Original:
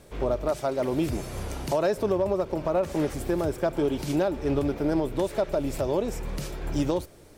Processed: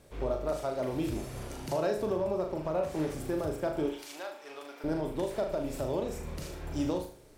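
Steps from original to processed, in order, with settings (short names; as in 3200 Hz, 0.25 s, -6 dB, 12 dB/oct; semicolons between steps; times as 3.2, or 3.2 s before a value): 3.89–4.84 HPF 1000 Hz 12 dB/oct; on a send: flutter echo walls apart 6.6 m, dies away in 0.43 s; on the sum: gain -7 dB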